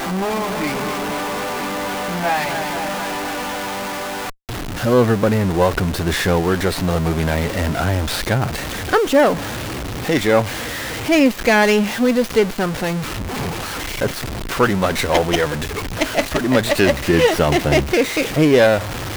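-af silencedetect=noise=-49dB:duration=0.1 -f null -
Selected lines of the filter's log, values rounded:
silence_start: 4.34
silence_end: 4.49 | silence_duration: 0.15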